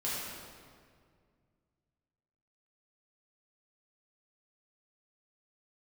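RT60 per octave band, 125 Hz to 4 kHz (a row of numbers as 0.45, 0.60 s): 2.9, 2.6, 2.2, 1.9, 1.7, 1.4 s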